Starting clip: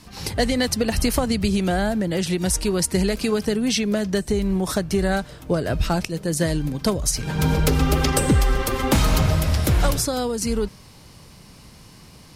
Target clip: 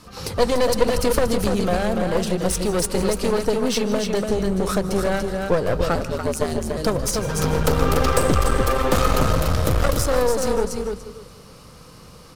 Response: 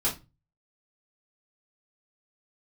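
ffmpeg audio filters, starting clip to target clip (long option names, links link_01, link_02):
-filter_complex "[0:a]equalizer=frequency=500:width_type=o:width=0.33:gain=12,equalizer=frequency=1250:width_type=o:width=0.33:gain=11,equalizer=frequency=2000:width_type=o:width=0.33:gain=-3,aecho=1:1:290|580|870:0.531|0.0956|0.0172,asettb=1/sr,asplit=3[link_01][link_02][link_03];[link_01]atrim=end=5.954[link_04];[link_02]atrim=start=5.95:end=6.77,asetpts=PTS-STARTPTS,afade=type=in:duration=0.004:curve=qsin,afade=type=out:start_time=0.816:duration=0.004:curve=qsin,aeval=exprs='val(0)*sin(2*PI*78*n/s)':channel_layout=same[link_05];[link_03]atrim=start=6.766[link_06];[link_04][link_05]acrossfade=duration=0.004:curve1=hsin:curve2=qsin[link_07];[link_07][link_06]acrossfade=duration=0.004:curve1=qsin:curve2=hsin,aeval=exprs='clip(val(0),-1,0.075)':channel_layout=same,asplit=2[link_08][link_09];[1:a]atrim=start_sample=2205,asetrate=52920,aresample=44100,adelay=146[link_10];[link_09][link_10]afir=irnorm=-1:irlink=0,volume=-21.5dB[link_11];[link_08][link_11]amix=inputs=2:normalize=0,volume=-1dB"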